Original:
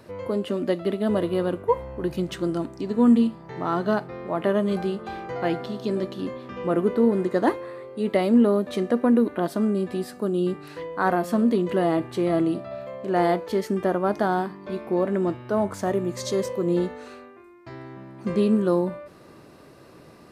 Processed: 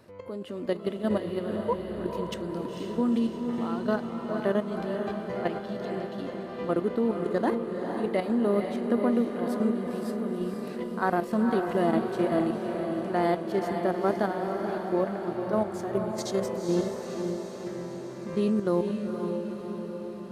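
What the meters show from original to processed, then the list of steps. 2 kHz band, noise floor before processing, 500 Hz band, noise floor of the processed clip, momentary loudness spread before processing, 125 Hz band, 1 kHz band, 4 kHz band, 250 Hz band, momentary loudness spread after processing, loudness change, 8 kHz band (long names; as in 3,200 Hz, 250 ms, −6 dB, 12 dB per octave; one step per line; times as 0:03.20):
−3.5 dB, −49 dBFS, −4.0 dB, −38 dBFS, 12 LU, −5.0 dB, −3.5 dB, −4.0 dB, −4.5 dB, 9 LU, −4.5 dB, can't be measured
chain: output level in coarse steps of 11 dB
feedback delay with all-pass diffusion 488 ms, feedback 64%, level −5 dB
level −2 dB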